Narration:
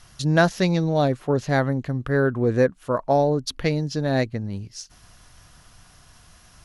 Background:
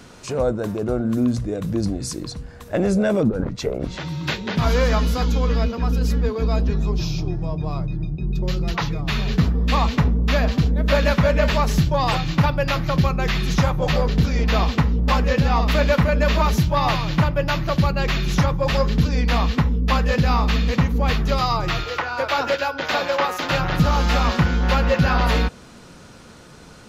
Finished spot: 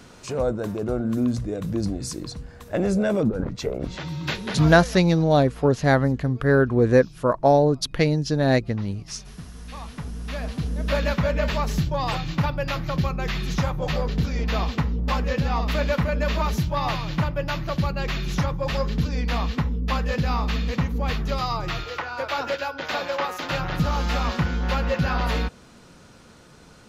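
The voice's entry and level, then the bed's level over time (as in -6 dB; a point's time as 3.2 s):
4.35 s, +2.5 dB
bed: 4.52 s -3 dB
5.06 s -22 dB
9.47 s -22 dB
10.94 s -5.5 dB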